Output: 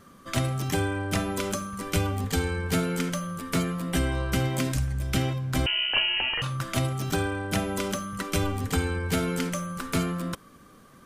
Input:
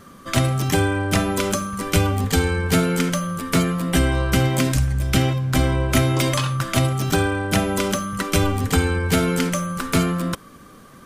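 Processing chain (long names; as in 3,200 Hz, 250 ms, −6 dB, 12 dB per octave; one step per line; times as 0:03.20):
0:05.66–0:06.42: voice inversion scrambler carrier 3,000 Hz
level −7.5 dB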